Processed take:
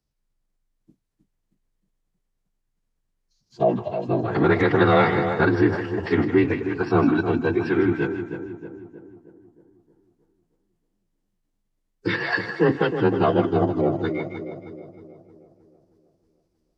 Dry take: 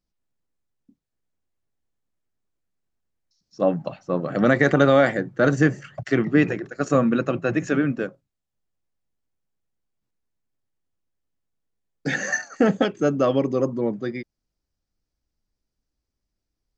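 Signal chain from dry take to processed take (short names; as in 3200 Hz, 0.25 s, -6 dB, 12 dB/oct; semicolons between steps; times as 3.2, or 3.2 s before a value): in parallel at +1 dB: limiter -15 dBFS, peak gain reduction 11 dB; on the sum: frequency shift +39 Hz; split-band echo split 1000 Hz, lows 0.314 s, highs 0.157 s, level -9 dB; formant-preserving pitch shift -9 st; gain -3.5 dB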